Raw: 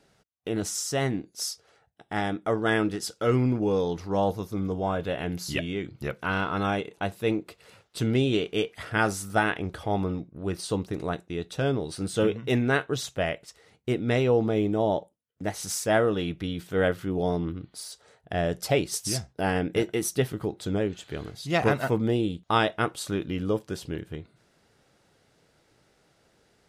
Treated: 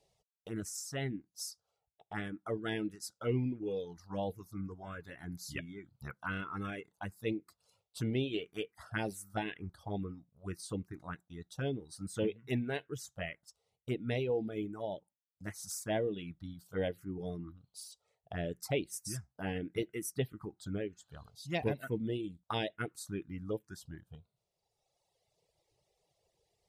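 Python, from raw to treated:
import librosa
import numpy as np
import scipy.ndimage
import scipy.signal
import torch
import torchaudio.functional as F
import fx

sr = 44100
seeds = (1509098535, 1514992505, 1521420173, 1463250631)

y = fx.dereverb_blind(x, sr, rt60_s=1.9)
y = fx.env_phaser(y, sr, low_hz=250.0, high_hz=1300.0, full_db=-21.5)
y = y * 10.0 ** (-7.5 / 20.0)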